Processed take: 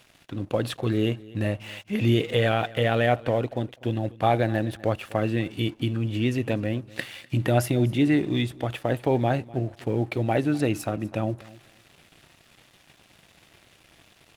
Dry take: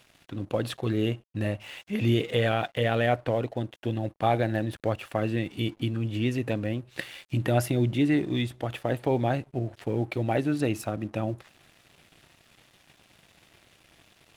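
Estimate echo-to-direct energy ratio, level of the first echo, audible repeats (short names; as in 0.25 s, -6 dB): -21.0 dB, -21.0 dB, 1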